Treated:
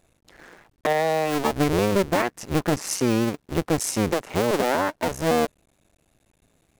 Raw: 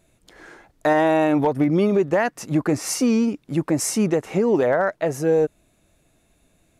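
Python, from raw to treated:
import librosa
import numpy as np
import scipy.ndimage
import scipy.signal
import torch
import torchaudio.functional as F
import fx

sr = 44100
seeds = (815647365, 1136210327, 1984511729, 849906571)

y = fx.cycle_switch(x, sr, every=2, mode='muted')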